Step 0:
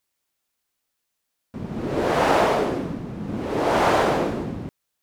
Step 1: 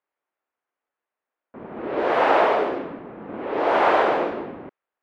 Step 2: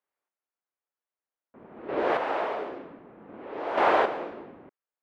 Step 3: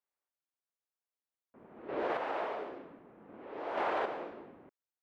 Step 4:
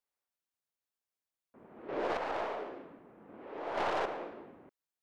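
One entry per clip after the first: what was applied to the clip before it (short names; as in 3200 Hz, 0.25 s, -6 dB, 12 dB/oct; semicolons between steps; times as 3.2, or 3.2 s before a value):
three-band isolator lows -20 dB, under 310 Hz, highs -23 dB, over 3400 Hz; low-pass opened by the level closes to 1600 Hz, open at -19 dBFS; gain +2 dB
chopper 0.53 Hz, depth 60%, duty 15%; gain -3.5 dB
limiter -17 dBFS, peak gain reduction 6.5 dB; gain -7 dB
tracing distortion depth 0.1 ms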